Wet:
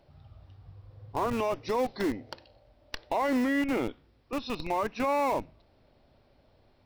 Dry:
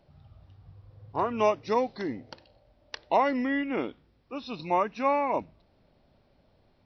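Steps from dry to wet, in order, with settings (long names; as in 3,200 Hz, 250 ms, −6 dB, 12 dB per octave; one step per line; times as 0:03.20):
parametric band 180 Hz −6.5 dB 0.47 octaves
in parallel at −6.5 dB: comparator with hysteresis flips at −30.5 dBFS
on the sum: brickwall limiter −22 dBFS, peak gain reduction 11 dB
level +2 dB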